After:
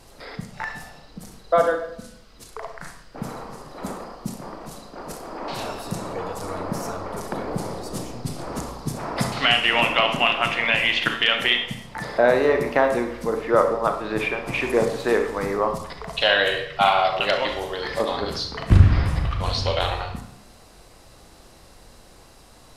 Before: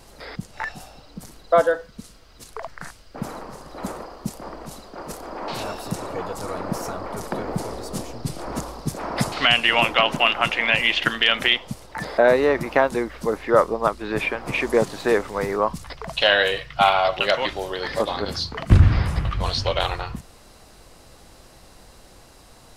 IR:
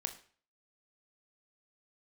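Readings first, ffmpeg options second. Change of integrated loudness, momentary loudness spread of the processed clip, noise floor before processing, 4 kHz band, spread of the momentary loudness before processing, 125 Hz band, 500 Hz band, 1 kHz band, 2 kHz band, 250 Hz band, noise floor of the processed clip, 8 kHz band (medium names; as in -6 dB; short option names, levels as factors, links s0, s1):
-0.5 dB, 19 LU, -49 dBFS, -1.0 dB, 18 LU, 0.0 dB, -0.5 dB, -0.5 dB, -0.5 dB, -0.5 dB, -49 dBFS, -1.0 dB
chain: -filter_complex "[1:a]atrim=start_sample=2205,asetrate=26460,aresample=44100[s0];[0:a][s0]afir=irnorm=-1:irlink=0,volume=0.708"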